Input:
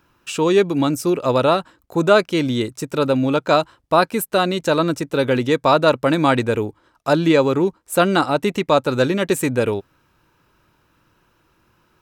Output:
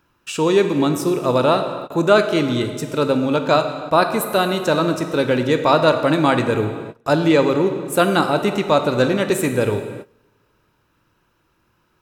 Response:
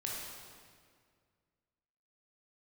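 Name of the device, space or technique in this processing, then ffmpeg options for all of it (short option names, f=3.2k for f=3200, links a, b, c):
keyed gated reverb: -filter_complex "[0:a]asplit=3[a][b][c];[1:a]atrim=start_sample=2205[d];[b][d]afir=irnorm=-1:irlink=0[e];[c]apad=whole_len=530011[f];[e][f]sidechaingate=range=-23dB:threshold=-52dB:ratio=16:detection=peak,volume=-4dB[g];[a][g]amix=inputs=2:normalize=0,volume=-3.5dB"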